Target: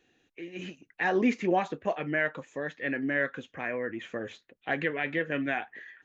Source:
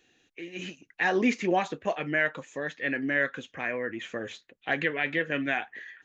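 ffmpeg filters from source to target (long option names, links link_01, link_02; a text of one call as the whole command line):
ffmpeg -i in.wav -af "highshelf=frequency=2500:gain=-8.5" out.wav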